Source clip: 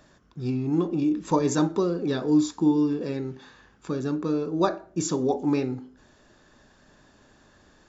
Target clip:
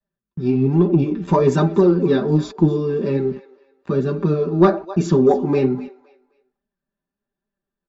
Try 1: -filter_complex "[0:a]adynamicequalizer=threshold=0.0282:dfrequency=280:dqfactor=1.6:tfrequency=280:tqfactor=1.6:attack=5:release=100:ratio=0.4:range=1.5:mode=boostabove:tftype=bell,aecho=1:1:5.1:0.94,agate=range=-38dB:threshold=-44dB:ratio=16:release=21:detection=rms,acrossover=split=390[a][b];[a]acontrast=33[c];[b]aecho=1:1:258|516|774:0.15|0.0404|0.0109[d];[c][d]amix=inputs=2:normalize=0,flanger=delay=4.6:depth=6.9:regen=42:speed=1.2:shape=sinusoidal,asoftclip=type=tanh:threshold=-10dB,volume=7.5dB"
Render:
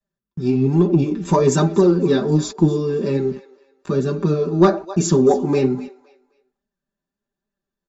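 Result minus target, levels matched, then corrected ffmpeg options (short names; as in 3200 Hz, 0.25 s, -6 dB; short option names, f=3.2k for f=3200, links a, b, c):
4000 Hz band +5.0 dB
-filter_complex "[0:a]adynamicequalizer=threshold=0.0282:dfrequency=280:dqfactor=1.6:tfrequency=280:tqfactor=1.6:attack=5:release=100:ratio=0.4:range=1.5:mode=boostabove:tftype=bell,lowpass=3.4k,aecho=1:1:5.1:0.94,agate=range=-38dB:threshold=-44dB:ratio=16:release=21:detection=rms,acrossover=split=390[a][b];[a]acontrast=33[c];[b]aecho=1:1:258|516|774:0.15|0.0404|0.0109[d];[c][d]amix=inputs=2:normalize=0,flanger=delay=4.6:depth=6.9:regen=42:speed=1.2:shape=sinusoidal,asoftclip=type=tanh:threshold=-10dB,volume=7.5dB"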